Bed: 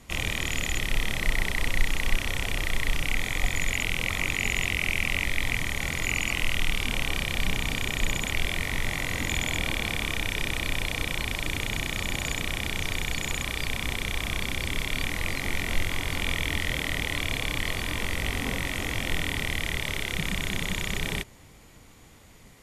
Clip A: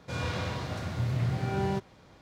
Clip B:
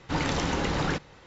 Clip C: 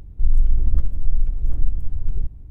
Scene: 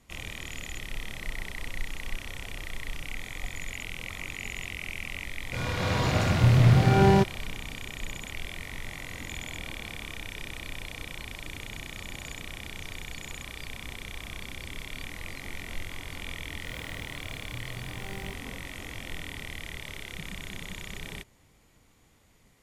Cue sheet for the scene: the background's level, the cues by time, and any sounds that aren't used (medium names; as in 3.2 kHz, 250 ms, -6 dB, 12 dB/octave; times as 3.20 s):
bed -10 dB
5.44 s: add A -1 dB + level rider
16.54 s: add A -13.5 dB + sampling jitter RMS 0.024 ms
not used: B, C